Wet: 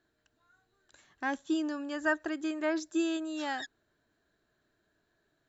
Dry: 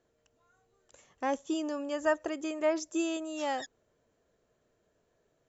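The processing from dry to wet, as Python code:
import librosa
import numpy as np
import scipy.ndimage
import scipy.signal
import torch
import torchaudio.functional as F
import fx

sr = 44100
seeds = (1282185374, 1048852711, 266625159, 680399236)

y = fx.graphic_eq_31(x, sr, hz=(315, 500, 1600, 4000, 6300), db=(6, -12, 12, 10, -4))
y = y * 10.0 ** (-2.5 / 20.0)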